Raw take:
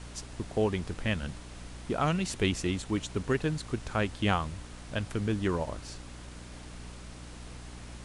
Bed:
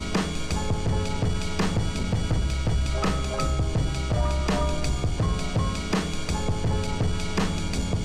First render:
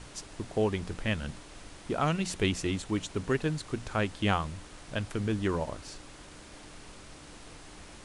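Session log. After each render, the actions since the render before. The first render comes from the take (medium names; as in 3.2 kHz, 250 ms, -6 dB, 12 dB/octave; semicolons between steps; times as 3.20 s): hum notches 60/120/180/240 Hz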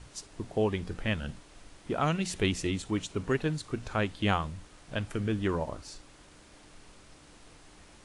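noise print and reduce 6 dB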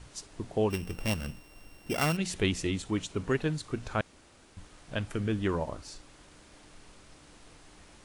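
0.70–2.17 s: sorted samples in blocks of 16 samples; 4.01–4.57 s: room tone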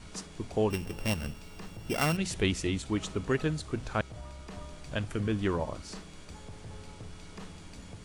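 add bed -20.5 dB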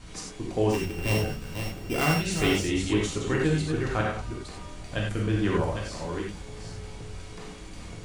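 chunks repeated in reverse 448 ms, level -6.5 dB; gated-style reverb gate 120 ms flat, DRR -2.5 dB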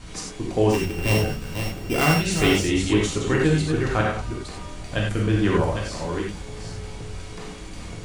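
trim +5 dB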